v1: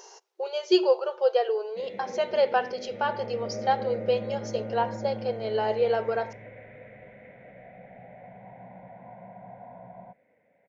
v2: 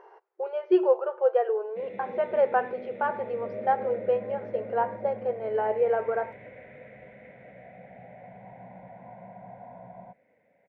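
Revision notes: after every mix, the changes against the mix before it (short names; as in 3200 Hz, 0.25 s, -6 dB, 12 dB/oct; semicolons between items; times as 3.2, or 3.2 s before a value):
speech: add LPF 1900 Hz 24 dB/oct; second sound -9.0 dB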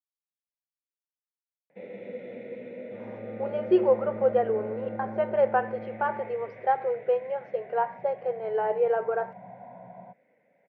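speech: entry +3.00 s; second sound +9.5 dB; master: add HPF 120 Hz 24 dB/oct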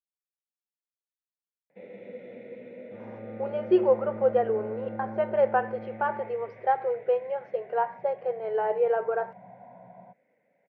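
first sound -3.5 dB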